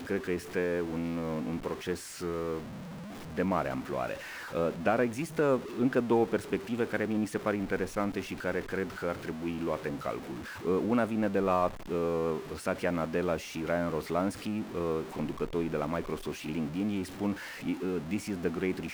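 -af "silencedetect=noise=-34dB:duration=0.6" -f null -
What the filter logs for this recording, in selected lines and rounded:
silence_start: 2.59
silence_end: 3.37 | silence_duration: 0.79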